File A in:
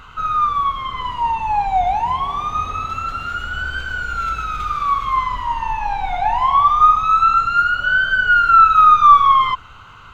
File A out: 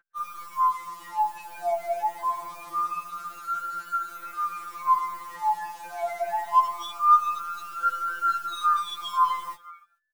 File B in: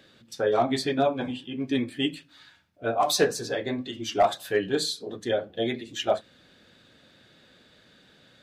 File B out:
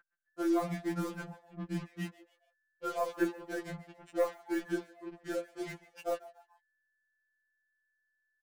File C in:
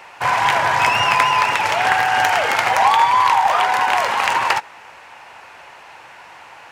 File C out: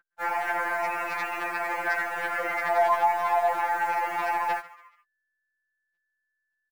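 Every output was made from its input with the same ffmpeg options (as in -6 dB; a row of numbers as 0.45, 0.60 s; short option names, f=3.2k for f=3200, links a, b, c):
-filter_complex "[0:a]anlmdn=25.1,equalizer=f=710:w=0.34:g=-5.5,asplit=2[a][b];[b]acompressor=threshold=-27dB:ratio=8,volume=-0.5dB[c];[a][c]amix=inputs=2:normalize=0,highpass=f=350:t=q:w=0.5412,highpass=f=350:t=q:w=1.307,lowpass=f=2.2k:t=q:w=0.5176,lowpass=f=2.2k:t=q:w=0.7071,lowpass=f=2.2k:t=q:w=1.932,afreqshift=-90,acrusher=bits=5:mix=0:aa=0.5,aeval=exprs='val(0)+0.00794*sin(2*PI*1500*n/s)':c=same,asoftclip=type=hard:threshold=-11dB,asplit=4[d][e][f][g];[e]adelay=142,afreqshift=120,volume=-19dB[h];[f]adelay=284,afreqshift=240,volume=-26.5dB[i];[g]adelay=426,afreqshift=360,volume=-34.1dB[j];[d][h][i][j]amix=inputs=4:normalize=0,aeval=exprs='0.355*(cos(1*acos(clip(val(0)/0.355,-1,1)))-cos(1*PI/2))+0.00282*(cos(6*acos(clip(val(0)/0.355,-1,1)))-cos(6*PI/2))':c=same,afftfilt=real='re*2.83*eq(mod(b,8),0)':imag='im*2.83*eq(mod(b,8),0)':win_size=2048:overlap=0.75,volume=-5dB"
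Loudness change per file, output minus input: -11.5, -10.0, -11.0 LU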